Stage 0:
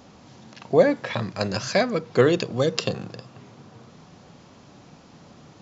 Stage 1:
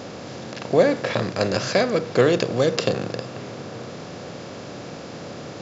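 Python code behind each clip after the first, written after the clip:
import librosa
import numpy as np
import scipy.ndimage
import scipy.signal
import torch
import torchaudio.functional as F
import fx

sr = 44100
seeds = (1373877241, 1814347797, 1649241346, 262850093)

y = fx.bin_compress(x, sr, power=0.6)
y = y * librosa.db_to_amplitude(-1.5)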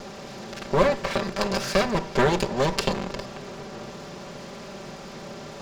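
y = fx.lower_of_two(x, sr, delay_ms=5.1)
y = y * librosa.db_to_amplitude(-1.5)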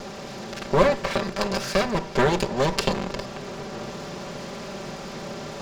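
y = fx.rider(x, sr, range_db=4, speed_s=2.0)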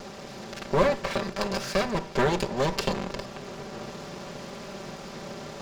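y = fx.leveller(x, sr, passes=1)
y = y * librosa.db_to_amplitude(-7.0)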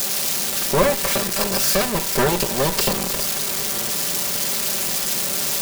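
y = x + 0.5 * 10.0 ** (-16.0 / 20.0) * np.diff(np.sign(x), prepend=np.sign(x[:1]))
y = y * librosa.db_to_amplitude(4.5)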